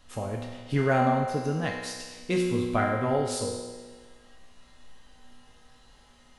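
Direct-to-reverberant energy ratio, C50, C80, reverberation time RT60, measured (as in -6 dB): -2.0 dB, 2.0 dB, 3.5 dB, 1.5 s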